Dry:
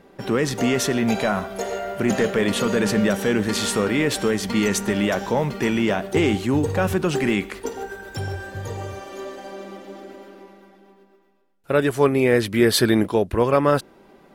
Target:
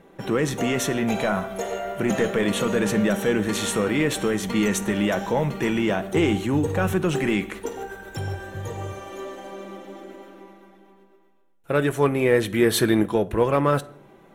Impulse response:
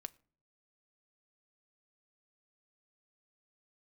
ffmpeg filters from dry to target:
-filter_complex "[0:a]equalizer=frequency=4800:width=6.3:gain=-13.5,asplit=2[link_01][link_02];[link_02]asoftclip=type=tanh:threshold=-19.5dB,volume=-11dB[link_03];[link_01][link_03]amix=inputs=2:normalize=0[link_04];[1:a]atrim=start_sample=2205,asetrate=30870,aresample=44100[link_05];[link_04][link_05]afir=irnorm=-1:irlink=0"

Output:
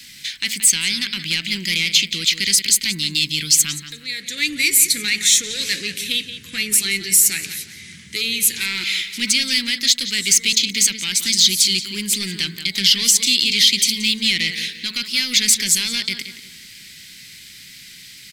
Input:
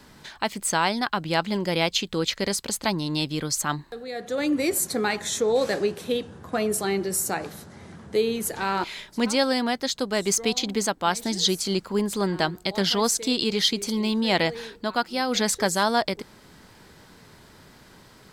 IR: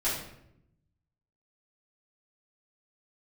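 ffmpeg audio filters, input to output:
-filter_complex "[0:a]acrossover=split=590[link_01][link_02];[link_02]alimiter=limit=-17.5dB:level=0:latency=1:release=82[link_03];[link_01][link_03]amix=inputs=2:normalize=0,lowshelf=frequency=140:gain=-8.5,bandreject=frequency=219.8:width_type=h:width=4,bandreject=frequency=439.6:width_type=h:width=4,bandreject=frequency=659.4:width_type=h:width=4,bandreject=frequency=879.2:width_type=h:width=4,bandreject=frequency=1099:width_type=h:width=4,bandreject=frequency=1318.8:width_type=h:width=4,bandreject=frequency=1538.6:width_type=h:width=4,bandreject=frequency=1758.4:width_type=h:width=4,bandreject=frequency=1978.2:width_type=h:width=4,bandreject=frequency=2198:width_type=h:width=4,asplit=2[link_04][link_05];[link_05]adelay=176,lowpass=frequency=3500:poles=1,volume=-10.5dB,asplit=2[link_06][link_07];[link_07]adelay=176,lowpass=frequency=3500:poles=1,volume=0.37,asplit=2[link_08][link_09];[link_09]adelay=176,lowpass=frequency=3500:poles=1,volume=0.37,asplit=2[link_10][link_11];[link_11]adelay=176,lowpass=frequency=3500:poles=1,volume=0.37[link_12];[link_06][link_08][link_10][link_12]amix=inputs=4:normalize=0[link_13];[link_04][link_13]amix=inputs=2:normalize=0,asoftclip=type=tanh:threshold=-19dB,firequalizer=gain_entry='entry(180,0);entry(680,-30);entry(2100,14)':delay=0.05:min_phase=1,volume=2.5dB"

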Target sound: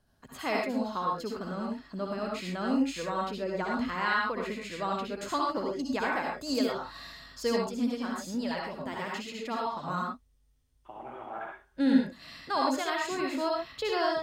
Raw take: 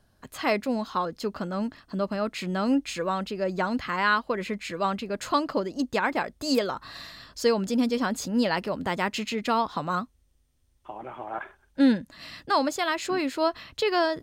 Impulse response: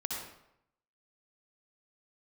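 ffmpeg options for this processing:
-filter_complex "[1:a]atrim=start_sample=2205,atrim=end_sample=6174[link_01];[0:a][link_01]afir=irnorm=-1:irlink=0,asettb=1/sr,asplit=3[link_02][link_03][link_04];[link_02]atrim=end=7.694[link_05];[link_03]atrim=start=7.69:end=9.88,asetpts=PTS-STARTPTS,afade=type=in:duration=0.004:curve=qsin,afade=type=out:start_time=2.186:duration=0.004:curve=qsin,flanger=delay=0.9:depth=8.3:regen=40:speed=1.2:shape=triangular[link_06];[link_04]atrim=start=9.876[link_07];[link_05][link_06]acrossfade=duration=0.004:curve1=hsin:curve2=qsin[link_08];[link_08][link_07]acrossfade=duration=0.004:curve1=qsin:curve2=hsin,volume=-6dB"

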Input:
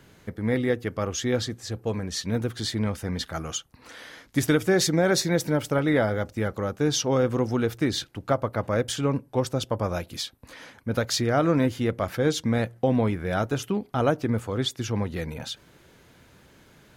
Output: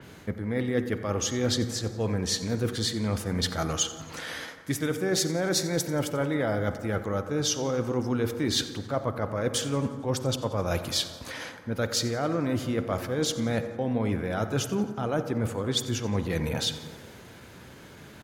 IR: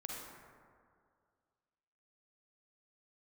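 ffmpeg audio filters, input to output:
-filter_complex "[0:a]highpass=55,areverse,acompressor=threshold=-31dB:ratio=12,areverse,atempo=0.93,aecho=1:1:89|178|267|356|445:0.119|0.0689|0.04|0.0232|0.0134,asplit=2[link_01][link_02];[1:a]atrim=start_sample=2205,highshelf=frequency=7600:gain=-11.5[link_03];[link_02][link_03]afir=irnorm=-1:irlink=0,volume=-5dB[link_04];[link_01][link_04]amix=inputs=2:normalize=0,adynamicequalizer=threshold=0.00501:dfrequency=4400:dqfactor=0.7:tfrequency=4400:tqfactor=0.7:attack=5:release=100:ratio=0.375:range=2:mode=boostabove:tftype=highshelf,volume=4.5dB"

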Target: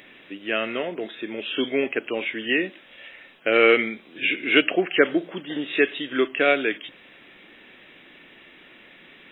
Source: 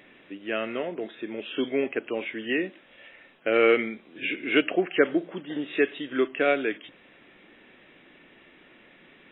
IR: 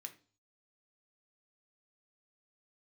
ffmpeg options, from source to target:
-af "highshelf=frequency=2500:gain=10,volume=2dB"

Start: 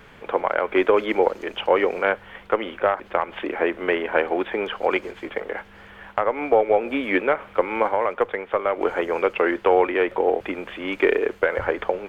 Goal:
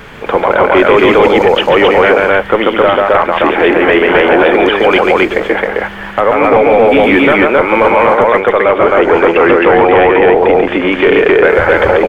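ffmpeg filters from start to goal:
ffmpeg -i in.wav -filter_complex "[0:a]asettb=1/sr,asplit=3[link_01][link_02][link_03];[link_01]atrim=end=8.734[link_04];[link_02]atrim=start=8.73:end=11.45,asetpts=PTS-STARTPTS,afade=type=in:duration=0.004:curve=qsin,afade=type=out:start_time=2.716:duration=0.004:curve=qsin,lowpass=frequency=2800:poles=1[link_05];[link_03]atrim=start=11.446[link_06];[link_04][link_05]acrossfade=duration=0.004:curve1=hsin:curve2=qsin[link_07];[link_07][link_06]acrossfade=duration=0.004:curve1=qsin:curve2=hsin,aecho=1:1:139.9|265.3:0.562|0.891,apsyclip=17.5dB,volume=-2dB" out.wav

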